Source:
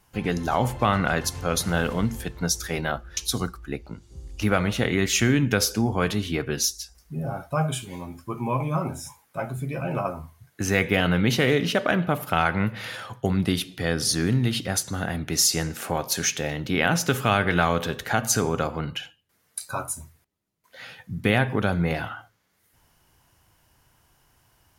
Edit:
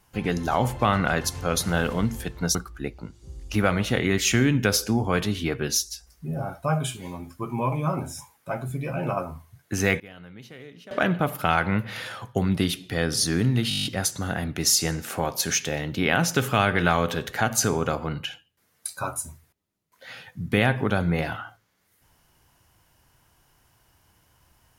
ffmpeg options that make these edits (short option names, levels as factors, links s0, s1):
-filter_complex "[0:a]asplit=12[s0][s1][s2][s3][s4][s5][s6][s7][s8][s9][s10][s11];[s0]atrim=end=2.552[s12];[s1]atrim=start=3.428:end=10.88,asetpts=PTS-STARTPTS,afade=t=out:st=7.312:d=0.14:c=log:silence=0.0707946[s13];[s2]atrim=start=10.88:end=11.79,asetpts=PTS-STARTPTS,volume=0.0708[s14];[s3]atrim=start=11.79:end=14.592,asetpts=PTS-STARTPTS,afade=t=in:d=0.14:c=log:silence=0.0707946[s15];[s4]atrim=start=14.568:end=14.592[s16];[s5]atrim=start=14.568:end=14.592[s17];[s6]atrim=start=14.568:end=14.592[s18];[s7]atrim=start=14.568:end=14.592[s19];[s8]atrim=start=14.568:end=14.592[s20];[s9]atrim=start=14.568:end=14.592[s21];[s10]atrim=start=14.568:end=14.592[s22];[s11]atrim=start=14.568[s23];[s13][s14][s15]concat=n=3:v=0:a=1[s24];[s12][s24]acrossfade=d=0.004:c1=hsin:c2=hsin[s25];[s25][s16]acrossfade=d=0.004:c1=hsin:c2=hsin[s26];[s26][s17]acrossfade=d=0.004:c1=hsin:c2=hsin[s27];[s27][s18]acrossfade=d=0.004:c1=hsin:c2=hsin[s28];[s28][s19]acrossfade=d=0.004:c1=hsin:c2=hsin[s29];[s29][s20]acrossfade=d=0.004:c1=hsin:c2=hsin[s30];[s30][s21]acrossfade=d=0.004:c1=hsin:c2=hsin[s31];[s31][s22]acrossfade=d=0.004:c1=hsin:c2=hsin[s32];[s32][s23]acrossfade=d=0.004:c1=hsin:c2=hsin"